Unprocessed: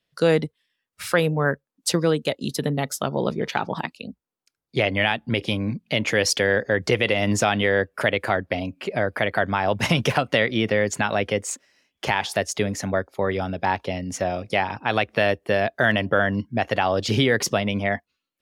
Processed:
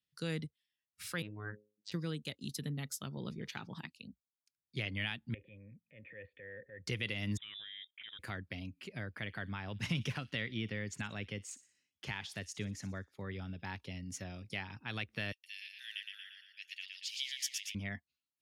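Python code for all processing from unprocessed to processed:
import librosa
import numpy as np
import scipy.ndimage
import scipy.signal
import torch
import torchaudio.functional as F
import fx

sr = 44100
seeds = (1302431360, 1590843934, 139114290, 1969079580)

y = fx.chain(x, sr, fx.hum_notches(base_hz=60, count=10),
    fx.robotise(hz=105.0),
    fx.gaussian_blur(sigma=2.1), at=(1.22, 1.92))
y = fx.chain(y, sr, fx.low_shelf(hz=98.0, db=11.0),
    fx.transient(attack_db=-7, sustain_db=6),
    fx.formant_cascade(vowel='e'), at=(5.34, 6.87))
y = fx.chain(y, sr, fx.level_steps(step_db=17),
    fx.air_absorb(metres=150.0),
    fx.freq_invert(carrier_hz=3700), at=(7.37, 8.19))
y = fx.chain(y, sr, fx.high_shelf(hz=6500.0, db=-10.5),
    fx.echo_wet_highpass(ms=60, feedback_pct=42, hz=3500.0, wet_db=-14.0), at=(9.08, 13.65))
y = fx.chain(y, sr, fx.steep_highpass(hz=2300.0, slope=36),
    fx.echo_feedback(ms=116, feedback_pct=52, wet_db=-4.0), at=(15.32, 17.75))
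y = scipy.signal.sosfilt(scipy.signal.butter(2, 70.0, 'highpass', fs=sr, output='sos'), y)
y = fx.tone_stack(y, sr, knobs='6-0-2')
y = F.gain(torch.from_numpy(y), 3.0).numpy()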